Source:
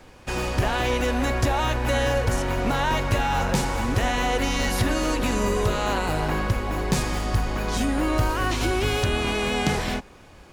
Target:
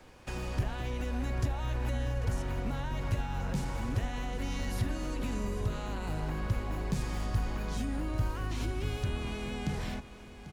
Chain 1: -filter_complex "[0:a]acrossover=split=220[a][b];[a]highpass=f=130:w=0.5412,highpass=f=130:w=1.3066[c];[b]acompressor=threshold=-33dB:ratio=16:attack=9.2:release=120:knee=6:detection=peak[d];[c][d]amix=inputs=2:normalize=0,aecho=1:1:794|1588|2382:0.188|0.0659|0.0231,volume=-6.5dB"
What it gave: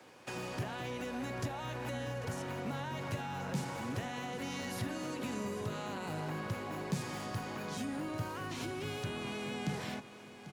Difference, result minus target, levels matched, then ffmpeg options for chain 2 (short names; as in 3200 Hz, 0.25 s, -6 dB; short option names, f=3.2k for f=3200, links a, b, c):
125 Hz band -3.0 dB
-filter_complex "[0:a]acrossover=split=220[a][b];[b]acompressor=threshold=-33dB:ratio=16:attack=9.2:release=120:knee=6:detection=peak[c];[a][c]amix=inputs=2:normalize=0,aecho=1:1:794|1588|2382:0.188|0.0659|0.0231,volume=-6.5dB"